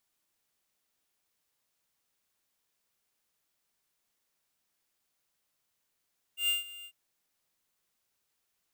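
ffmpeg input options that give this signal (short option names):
-f lavfi -i "aevalsrc='0.0447*(2*lt(mod(2800*t,1),0.5)-1)':d=0.548:s=44100,afade=t=in:d=0.114,afade=t=out:st=0.114:d=0.15:silence=0.112,afade=t=out:st=0.48:d=0.068"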